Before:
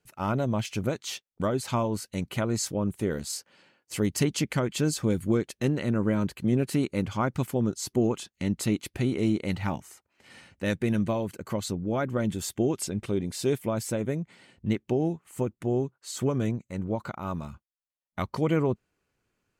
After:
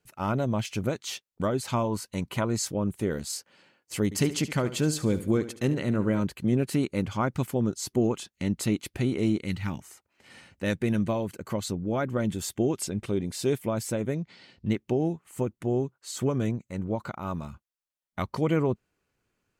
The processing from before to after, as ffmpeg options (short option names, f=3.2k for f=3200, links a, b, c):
-filter_complex "[0:a]asettb=1/sr,asplit=3[a][b][c];[a]atrim=end=1.874[d];[b]atrim=start=1.87:end=2.48,asetpts=PTS-STARTPTS,afade=t=in:d=0.004:c=qsin,afade=t=out:st=0.606:d=0.004:c=qsin,equalizer=f=1k:t=o:w=0.3:g=8.5[e];[c]atrim=start=2.476[f];[d][e]acrossfade=d=0.004:c1=hsin:c2=qsin[g];[g][f]acrossfade=d=0.004:c1=qsin:c2=hsin,asettb=1/sr,asplit=3[h][i][j];[h]atrim=end=4.044[k];[i]atrim=start=4.04:end=6.21,asetpts=PTS-STARTPTS,afade=t=in:d=0.004:c=qsin,afade=t=out:st=2.166:d=0.004:c=qsin,aecho=1:1:72|144|216|288:0.2|0.0778|0.0303|0.0118,atrim=end_sample=95697[l];[j]atrim=start=6.206[m];[k][l]acrossfade=d=0.004:c1=hsin:c2=qsin[n];[n][m]acrossfade=d=0.004:c1=qsin:c2=hsin,asettb=1/sr,asplit=3[o][p][q];[o]atrim=end=9.384[r];[p]atrim=start=9.38:end=9.78,asetpts=PTS-STARTPTS,afade=t=in:d=0.004:c=qsin,afade=t=out:st=0.396:d=0.004:c=qsin,equalizer=f=680:t=o:w=1.3:g=-11.5[s];[q]atrim=start=9.776[t];[r][s]acrossfade=d=0.004:c1=hsin:c2=qsin[u];[u][t]acrossfade=d=0.004:c1=qsin:c2=hsin,asettb=1/sr,asplit=3[v][w][x];[v]atrim=end=14.144[y];[w]atrim=start=14.14:end=14.68,asetpts=PTS-STARTPTS,afade=t=in:d=0.004:c=qsin,afade=t=out:st=0.536:d=0.004:c=qsin,lowpass=f=4.8k:t=q:w=2.7[z];[x]atrim=start=14.676[aa];[y][z]acrossfade=d=0.004:c1=hsin:c2=qsin[ab];[ab][aa]acrossfade=d=0.004:c1=qsin:c2=hsin"